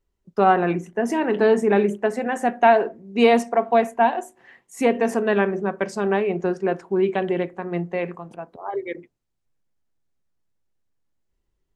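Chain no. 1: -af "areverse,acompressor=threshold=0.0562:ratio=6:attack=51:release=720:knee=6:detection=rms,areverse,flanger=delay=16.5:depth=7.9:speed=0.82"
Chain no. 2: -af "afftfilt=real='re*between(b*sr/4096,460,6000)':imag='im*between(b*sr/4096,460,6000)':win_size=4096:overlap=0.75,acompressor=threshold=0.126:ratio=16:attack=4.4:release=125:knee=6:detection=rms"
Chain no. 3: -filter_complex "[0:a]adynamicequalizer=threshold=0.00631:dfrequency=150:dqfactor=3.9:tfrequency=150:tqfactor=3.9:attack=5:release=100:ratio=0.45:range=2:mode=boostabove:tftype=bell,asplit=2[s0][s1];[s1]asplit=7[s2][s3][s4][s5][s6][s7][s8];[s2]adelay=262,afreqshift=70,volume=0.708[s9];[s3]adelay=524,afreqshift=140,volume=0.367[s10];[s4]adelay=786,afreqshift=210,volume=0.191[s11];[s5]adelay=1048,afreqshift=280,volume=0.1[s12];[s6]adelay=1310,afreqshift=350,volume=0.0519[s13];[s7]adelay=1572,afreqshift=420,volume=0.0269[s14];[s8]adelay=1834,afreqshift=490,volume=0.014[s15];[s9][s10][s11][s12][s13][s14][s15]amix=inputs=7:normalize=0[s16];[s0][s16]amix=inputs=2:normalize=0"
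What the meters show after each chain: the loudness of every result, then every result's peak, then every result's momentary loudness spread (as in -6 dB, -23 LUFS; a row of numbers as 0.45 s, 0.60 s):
-33.0 LUFS, -29.0 LUFS, -19.5 LUFS; -17.0 dBFS, -12.0 dBFS, -2.0 dBFS; 7 LU, 10 LU, 12 LU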